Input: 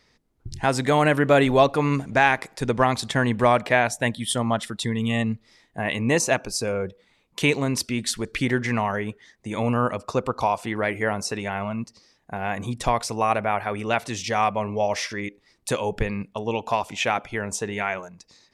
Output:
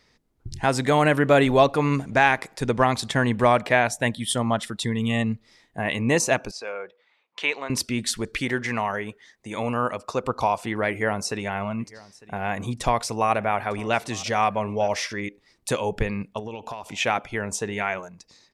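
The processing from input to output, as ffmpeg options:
ffmpeg -i in.wav -filter_complex "[0:a]asettb=1/sr,asplit=3[link_01][link_02][link_03];[link_01]atrim=end=6.514[link_04];[link_02]atrim=start=6.51:end=7.7,asetpts=PTS-STARTPTS,afade=type=in:duration=0.004:curve=qsin,afade=type=out:start_time=1.186:duration=0.004:curve=qsin,highpass=720,lowpass=3300[link_05];[link_03]atrim=start=7.696[link_06];[link_04][link_05]acrossfade=duration=0.004:curve1=hsin:curve2=qsin[link_07];[link_07][link_06]acrossfade=duration=0.004:curve1=qsin:curve2=hsin,asettb=1/sr,asplit=3[link_08][link_09][link_10];[link_08]atrim=end=8.374[link_11];[link_09]atrim=start=8.37:end=10.24,asetpts=PTS-STARTPTS,afade=type=in:duration=0.004:curve=qsin,afade=type=out:start_time=1.866:duration=0.004:curve=qsin,lowshelf=frequency=300:gain=-7.5[link_12];[link_10]atrim=start=10.236[link_13];[link_11][link_12]acrossfade=duration=0.004:curve1=hsin:curve2=qsin[link_14];[link_14][link_13]acrossfade=duration=0.004:curve1=qsin:curve2=hsin,asplit=3[link_15][link_16][link_17];[link_15]afade=type=out:start_time=11.79:duration=0.02[link_18];[link_16]aecho=1:1:902:0.0841,afade=type=in:start_time=11.79:duration=0.02,afade=type=out:start_time=14.96:duration=0.02[link_19];[link_17]afade=type=in:start_time=14.96:duration=0.02[link_20];[link_18][link_19][link_20]amix=inputs=3:normalize=0,asettb=1/sr,asplit=3[link_21][link_22][link_23];[link_21]atrim=end=16.394[link_24];[link_22]atrim=start=16.39:end=16.86,asetpts=PTS-STARTPTS,afade=type=in:duration=0.004:curve=qsin,afade=type=out:start_time=0.466:duration=0.004:curve=qsin,acompressor=threshold=-30dB:ratio=8:attack=3.2:release=140:knee=1:detection=peak[link_25];[link_23]atrim=start=16.856[link_26];[link_24][link_25]acrossfade=duration=0.004:curve1=hsin:curve2=qsin[link_27];[link_27][link_26]acrossfade=duration=0.004:curve1=qsin:curve2=hsin" out.wav

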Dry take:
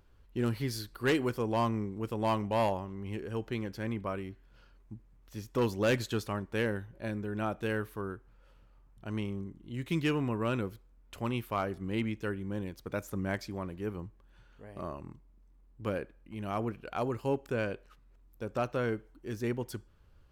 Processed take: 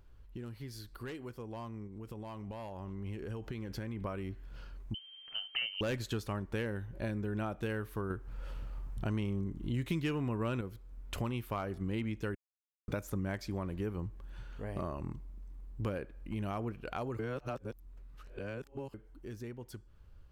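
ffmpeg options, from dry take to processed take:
ffmpeg -i in.wav -filter_complex "[0:a]asettb=1/sr,asplit=3[link_01][link_02][link_03];[link_01]atrim=end=1.874[link_04];[link_02]atrim=start=1.87:end=4.05,asetpts=PTS-STARTPTS,afade=type=in:duration=0.004:curve=qsin,afade=type=out:start_time=2.176:duration=0.004:curve=qsin,acompressor=threshold=-37dB:ratio=6:attack=3.2:release=140:knee=1:detection=peak[link_05];[link_03]atrim=start=4.046[link_06];[link_04][link_05]acrossfade=duration=0.004:curve1=hsin:curve2=qsin[link_07];[link_07][link_06]acrossfade=duration=0.004:curve1=qsin:curve2=hsin,asettb=1/sr,asplit=3[link_08][link_09][link_10];[link_08]atrim=end=4.944[link_11];[link_09]atrim=start=4.94:end=5.81,asetpts=PTS-STARTPTS,afade=type=in:duration=0.004:curve=qsin,afade=type=out:start_time=0.866:duration=0.004:curve=qsin,lowpass=frequency=2700:width_type=q:width=0.5098,lowpass=frequency=2700:width_type=q:width=0.6013,lowpass=frequency=2700:width_type=q:width=0.9,lowpass=frequency=2700:width_type=q:width=2.563,afreqshift=-3200[link_12];[link_10]atrim=start=5.806[link_13];[link_11][link_12]acrossfade=duration=0.004:curve1=hsin:curve2=qsin[link_14];[link_14][link_13]acrossfade=duration=0.004:curve1=qsin:curve2=hsin,asettb=1/sr,asplit=3[link_15][link_16][link_17];[link_15]atrim=end=8.104[link_18];[link_16]atrim=start=8.1:end=10.61,asetpts=PTS-STARTPTS,afade=type=in:duration=0.004:curve=qsin,afade=type=out:start_time=2.506:duration=0.004:curve=qsin,acontrast=36[link_19];[link_17]atrim=start=10.606[link_20];[link_18][link_19]acrossfade=duration=0.004:curve1=hsin:curve2=qsin[link_21];[link_21][link_20]acrossfade=duration=0.004:curve1=qsin:curve2=hsin,asplit=5[link_22][link_23][link_24][link_25][link_26];[link_22]atrim=end=12.35,asetpts=PTS-STARTPTS,afade=type=out:start_time=12.346:duration=0.004:curve=hsin[link_27];[link_23]atrim=start=12.35:end=12.88,asetpts=PTS-STARTPTS,volume=0[link_28];[link_24]atrim=start=12.88:end=17.192,asetpts=PTS-STARTPTS,afade=type=in:duration=0.004:curve=hsin[link_29];[link_25]atrim=start=17.188:end=18.942,asetpts=PTS-STARTPTS,areverse[link_30];[link_26]atrim=start=18.938[link_31];[link_27][link_28][link_29]concat=n=3:v=0:a=1[link_32];[link_32][link_30]acrossfade=duration=0.004:curve1=hsin:curve2=hsin[link_33];[link_33][link_31]acrossfade=duration=0.004:curve1=hsin:curve2=hsin,acompressor=threshold=-44dB:ratio=4,lowshelf=frequency=93:gain=8.5,dynaudnorm=framelen=530:gausssize=13:maxgain=9dB,volume=-1.5dB" out.wav

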